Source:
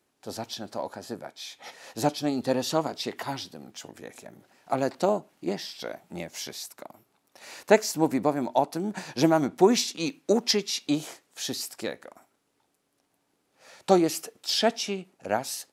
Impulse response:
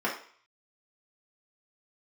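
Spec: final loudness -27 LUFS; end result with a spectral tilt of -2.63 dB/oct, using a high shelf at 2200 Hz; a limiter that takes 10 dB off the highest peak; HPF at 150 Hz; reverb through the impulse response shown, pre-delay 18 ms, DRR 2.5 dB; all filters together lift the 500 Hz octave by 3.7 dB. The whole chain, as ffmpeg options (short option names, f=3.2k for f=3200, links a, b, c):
-filter_complex "[0:a]highpass=150,equalizer=f=500:t=o:g=4.5,highshelf=f=2.2k:g=8.5,alimiter=limit=-12dB:level=0:latency=1,asplit=2[a][b];[1:a]atrim=start_sample=2205,adelay=18[c];[b][c]afir=irnorm=-1:irlink=0,volume=-13dB[d];[a][d]amix=inputs=2:normalize=0,volume=-2dB"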